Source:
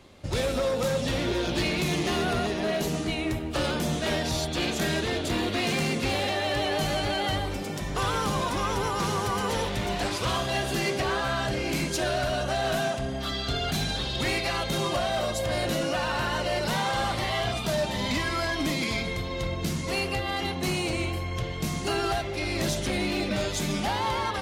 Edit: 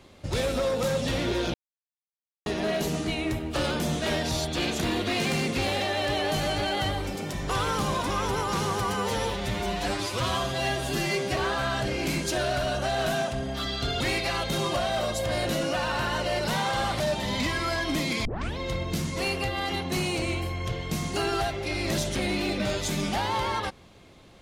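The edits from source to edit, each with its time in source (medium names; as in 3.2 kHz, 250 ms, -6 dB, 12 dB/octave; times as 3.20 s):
1.54–2.46 s: mute
4.81–5.28 s: delete
9.41–11.03 s: stretch 1.5×
13.66–14.20 s: delete
17.20–17.71 s: delete
18.96 s: tape start 0.32 s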